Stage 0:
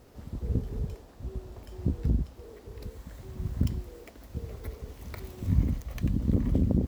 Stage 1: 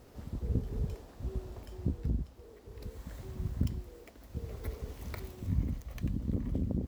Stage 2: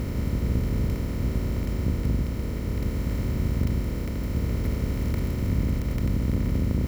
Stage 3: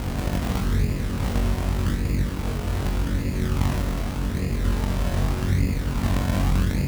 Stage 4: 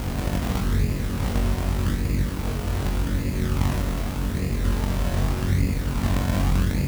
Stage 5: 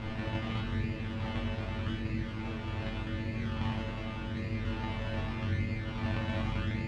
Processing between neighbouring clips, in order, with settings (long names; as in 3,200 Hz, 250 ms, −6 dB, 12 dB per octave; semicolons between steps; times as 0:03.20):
speech leveller within 4 dB 0.5 s; level −4 dB
compressor on every frequency bin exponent 0.2; low-shelf EQ 320 Hz +2.5 dB
sample-and-hold swept by an LFO 37×, swing 100% 0.84 Hz; on a send: flutter between parallel walls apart 3.7 metres, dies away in 0.32 s
bit-depth reduction 8 bits, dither triangular
low-pass with resonance 2,900 Hz, resonance Q 1.6; tuned comb filter 110 Hz, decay 0.22 s, harmonics all, mix 100%